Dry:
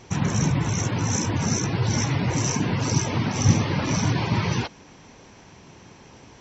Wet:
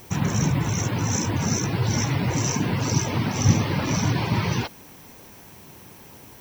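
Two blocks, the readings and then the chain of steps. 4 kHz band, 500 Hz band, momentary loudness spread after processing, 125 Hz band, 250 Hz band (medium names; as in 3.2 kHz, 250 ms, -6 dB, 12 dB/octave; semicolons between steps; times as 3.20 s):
0.0 dB, 0.0 dB, 4 LU, 0.0 dB, 0.0 dB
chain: added noise violet -50 dBFS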